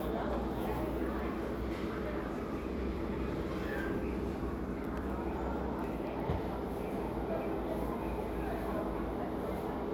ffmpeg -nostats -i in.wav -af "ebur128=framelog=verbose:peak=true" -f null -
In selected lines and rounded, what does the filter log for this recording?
Integrated loudness:
  I:         -37.1 LUFS
  Threshold: -47.1 LUFS
Loudness range:
  LRA:         0.5 LU
  Threshold: -57.2 LUFS
  LRA low:   -37.5 LUFS
  LRA high:  -37.0 LUFS
True peak:
  Peak:      -22.2 dBFS